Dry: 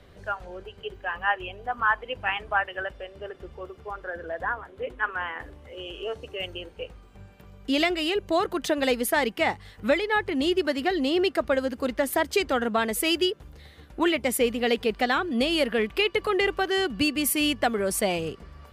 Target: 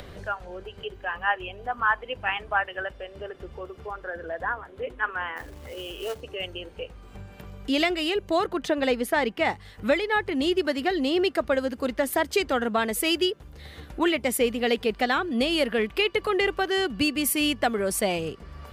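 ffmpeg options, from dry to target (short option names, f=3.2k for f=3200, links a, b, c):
-filter_complex "[0:a]acompressor=mode=upward:threshold=-33dB:ratio=2.5,asplit=3[a][b][c];[a]afade=t=out:st=5.36:d=0.02[d];[b]acrusher=bits=3:mode=log:mix=0:aa=0.000001,afade=t=in:st=5.36:d=0.02,afade=t=out:st=6.2:d=0.02[e];[c]afade=t=in:st=6.2:d=0.02[f];[d][e][f]amix=inputs=3:normalize=0,asettb=1/sr,asplit=3[g][h][i];[g]atrim=end=8.474[j];[h]atrim=start=8.47:end=9.45,asetpts=PTS-STARTPTS,afade=t=in:d=0.004:c=qsin,afade=t=out:st=0.976:d=0.004:c=qsin,aemphasis=mode=reproduction:type=cd[k];[i]atrim=start=9.446[l];[j][k]acrossfade=d=0.004:c1=hsin:c2=qsin[m];[m][l]acrossfade=d=0.004:c1=qsin:c2=hsin"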